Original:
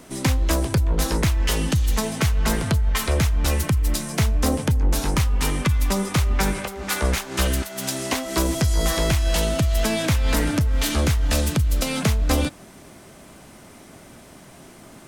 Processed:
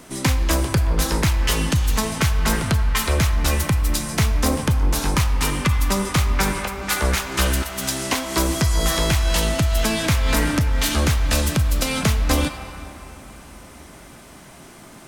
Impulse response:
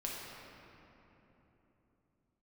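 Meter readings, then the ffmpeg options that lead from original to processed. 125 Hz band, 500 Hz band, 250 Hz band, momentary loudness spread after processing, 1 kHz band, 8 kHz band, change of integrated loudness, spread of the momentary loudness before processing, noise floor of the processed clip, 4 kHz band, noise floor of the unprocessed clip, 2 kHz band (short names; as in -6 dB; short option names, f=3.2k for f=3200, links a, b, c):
+1.0 dB, +0.5 dB, +1.0 dB, 3 LU, +3.5 dB, +3.0 dB, +1.5 dB, 3 LU, -43 dBFS, +3.0 dB, -46 dBFS, +3.5 dB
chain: -filter_complex "[0:a]asplit=2[a][b];[b]lowshelf=f=630:t=q:w=1.5:g=-10.5[c];[1:a]atrim=start_sample=2205[d];[c][d]afir=irnorm=-1:irlink=0,volume=-5.5dB[e];[a][e]amix=inputs=2:normalize=0"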